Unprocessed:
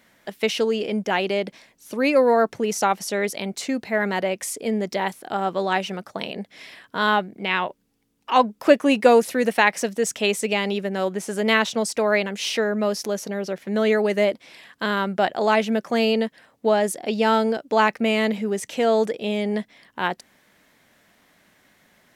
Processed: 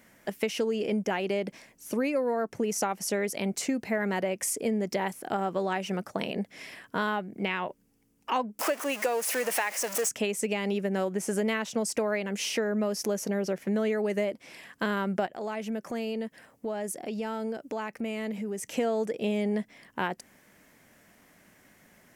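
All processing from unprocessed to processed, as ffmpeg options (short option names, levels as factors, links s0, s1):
-filter_complex "[0:a]asettb=1/sr,asplit=3[s0][s1][s2];[s0]atrim=end=8.594[s3];[s1]atrim=start=8.59:end=10.09,asetpts=PTS-STARTPTS,afade=t=in:d=0.004:c=qsin,afade=t=out:st=1.496:d=0.004:c=qsin,aeval=exprs='val(0)+0.5*0.0794*sgn(val(0))':c=same,highpass=600[s4];[s2]atrim=start=10.086[s5];[s3][s4]acrossfade=d=0.004:c1=hsin:c2=qsin[s6];[s6][s5]acrossfade=d=0.004:c1=qsin:c2=hsin,asettb=1/sr,asplit=3[s7][s8][s9];[s7]atrim=end=15.264[s10];[s8]atrim=start=15.26:end=18.74,asetpts=PTS-STARTPTS,afade=t=in:d=0.004:c=qsin,afade=t=out:st=3.476:d=0.004:c=qsin,highshelf=f=11000:g=3.5,acompressor=threshold=0.0141:ratio=2.5:attack=3.2:release=140:knee=1:detection=peak[s11];[s9]atrim=start=18.736[s12];[s10][s11]acrossfade=d=0.004:c1=hsin:c2=qsin[s13];[s13][s12]acrossfade=d=0.004:c1=qsin:c2=hsin,equalizer=f=1100:t=o:w=2.3:g=-4,acompressor=threshold=0.0447:ratio=10,equalizer=f=3800:t=o:w=0.64:g=-9.5,volume=1.33"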